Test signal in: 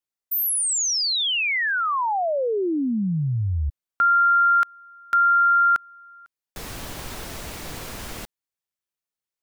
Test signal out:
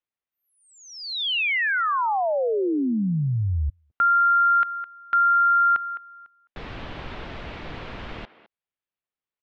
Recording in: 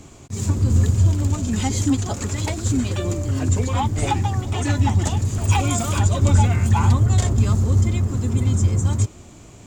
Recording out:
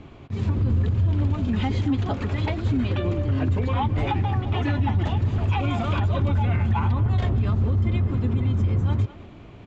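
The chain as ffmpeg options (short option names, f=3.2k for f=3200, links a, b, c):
-filter_complex "[0:a]lowpass=f=3.4k:w=0.5412,lowpass=f=3.4k:w=1.3066,asplit=2[a][b];[b]adelay=210,highpass=300,lowpass=3.4k,asoftclip=type=hard:threshold=-13.5dB,volume=-15dB[c];[a][c]amix=inputs=2:normalize=0,alimiter=limit=-15dB:level=0:latency=1:release=57"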